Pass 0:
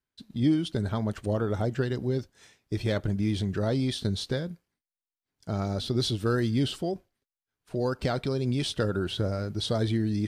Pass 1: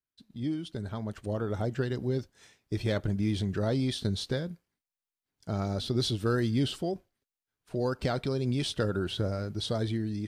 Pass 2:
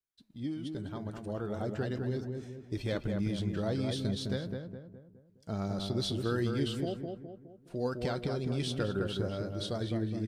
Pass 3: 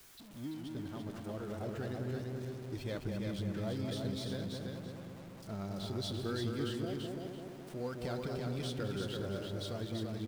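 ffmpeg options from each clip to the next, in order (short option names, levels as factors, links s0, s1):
-af "dynaudnorm=f=540:g=5:m=2.37,volume=0.355"
-filter_complex "[0:a]flanger=delay=2.7:depth=3.4:regen=75:speed=0.41:shape=sinusoidal,asplit=2[s0][s1];[s1]adelay=208,lowpass=f=1500:p=1,volume=0.631,asplit=2[s2][s3];[s3]adelay=208,lowpass=f=1500:p=1,volume=0.47,asplit=2[s4][s5];[s5]adelay=208,lowpass=f=1500:p=1,volume=0.47,asplit=2[s6][s7];[s7]adelay=208,lowpass=f=1500:p=1,volume=0.47,asplit=2[s8][s9];[s9]adelay=208,lowpass=f=1500:p=1,volume=0.47,asplit=2[s10][s11];[s11]adelay=208,lowpass=f=1500:p=1,volume=0.47[s12];[s2][s4][s6][s8][s10][s12]amix=inputs=6:normalize=0[s13];[s0][s13]amix=inputs=2:normalize=0"
-af "aeval=exprs='val(0)+0.5*0.00891*sgn(val(0))':c=same,aecho=1:1:337|674|1011|1348:0.631|0.164|0.0427|0.0111,volume=0.422"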